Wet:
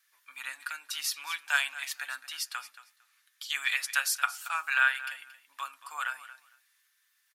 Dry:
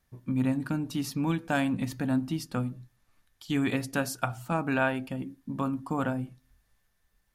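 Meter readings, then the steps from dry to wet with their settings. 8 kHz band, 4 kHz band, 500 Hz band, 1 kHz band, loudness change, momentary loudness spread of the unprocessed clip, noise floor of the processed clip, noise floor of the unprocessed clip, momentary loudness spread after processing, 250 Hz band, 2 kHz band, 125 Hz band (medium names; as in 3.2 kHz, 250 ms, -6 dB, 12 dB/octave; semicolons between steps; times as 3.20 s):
+7.5 dB, +8.0 dB, -23.0 dB, -1.0 dB, -0.5 dB, 8 LU, -72 dBFS, -73 dBFS, 17 LU, under -40 dB, +7.0 dB, under -40 dB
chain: high-pass 1.4 kHz 24 dB/octave; comb 7 ms, depth 36%; feedback delay 227 ms, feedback 17%, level -15.5 dB; trim +7 dB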